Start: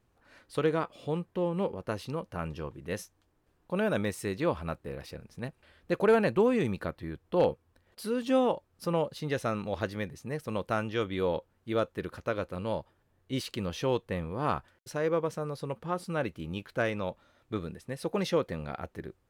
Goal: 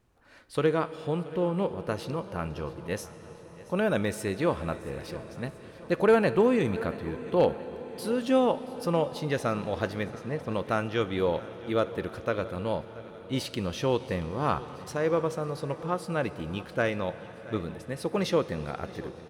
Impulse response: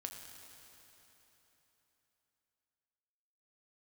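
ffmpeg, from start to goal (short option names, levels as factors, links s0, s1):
-filter_complex "[0:a]asettb=1/sr,asplit=3[s0][s1][s2];[s0]atrim=end=10.034[s3];[s1]atrim=start=10.03:end=10.54,asetpts=PTS-STARTPTS,afade=t=in:d=0.004:c=qsin,afade=t=out:st=0.506:d=0.004:c=qsin,lowpass=f=2700:p=1[s4];[s2]atrim=start=10.536[s5];[s3][s4]acrossfade=d=0.004:c1=hsin:c2=qsin[s6];[s6][s5]acrossfade=d=0.004:c1=qsin:c2=hsin,aecho=1:1:678|1356|2034|2712:0.112|0.0606|0.0327|0.0177,asplit=2[s7][s8];[1:a]atrim=start_sample=2205,asetrate=22491,aresample=44100[s9];[s8][s9]afir=irnorm=-1:irlink=0,volume=0.355[s10];[s7][s10]amix=inputs=2:normalize=0"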